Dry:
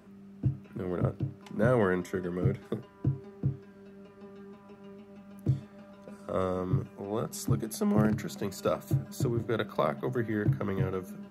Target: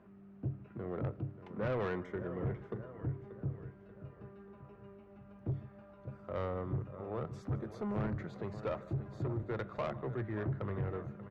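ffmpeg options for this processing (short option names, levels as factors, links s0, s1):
-filter_complex "[0:a]lowpass=1900,equalizer=f=230:w=1.5:g=-3,asplit=2[s0][s1];[s1]aecho=0:1:152:0.0794[s2];[s0][s2]amix=inputs=2:normalize=0,asubboost=boost=3:cutoff=97,asplit=2[s3][s4];[s4]aecho=0:1:585|1170|1755|2340|2925:0.168|0.0839|0.042|0.021|0.0105[s5];[s3][s5]amix=inputs=2:normalize=0,asoftclip=type=tanh:threshold=0.0473,volume=0.668"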